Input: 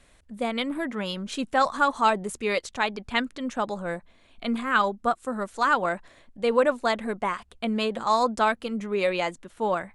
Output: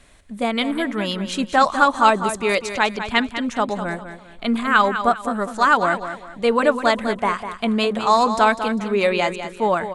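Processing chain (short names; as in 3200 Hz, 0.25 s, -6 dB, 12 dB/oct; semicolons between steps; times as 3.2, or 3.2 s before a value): notch 510 Hz, Q 13; feedback echo 0.2 s, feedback 32%, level -10 dB; gain +6.5 dB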